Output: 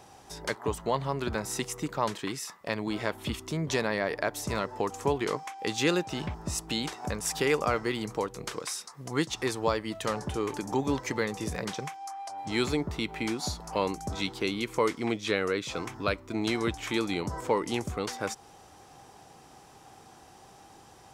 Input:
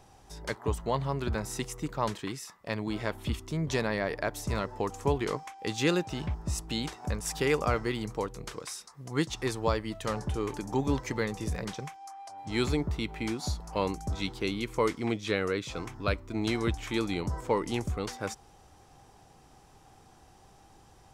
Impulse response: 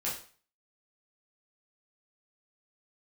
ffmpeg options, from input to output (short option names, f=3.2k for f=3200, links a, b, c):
-filter_complex "[0:a]highpass=f=200:p=1,asplit=2[a][b];[b]acompressor=threshold=-38dB:ratio=6,volume=0dB[c];[a][c]amix=inputs=2:normalize=0"